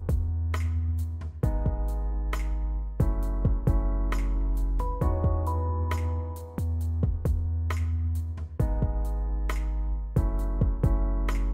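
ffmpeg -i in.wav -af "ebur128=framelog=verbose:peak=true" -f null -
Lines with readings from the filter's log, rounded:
Integrated loudness:
  I:         -29.4 LUFS
  Threshold: -39.4 LUFS
Loudness range:
  LRA:         1.5 LU
  Threshold: -49.5 LUFS
  LRA low:   -30.0 LUFS
  LRA high:  -28.6 LUFS
True peak:
  Peak:      -11.5 dBFS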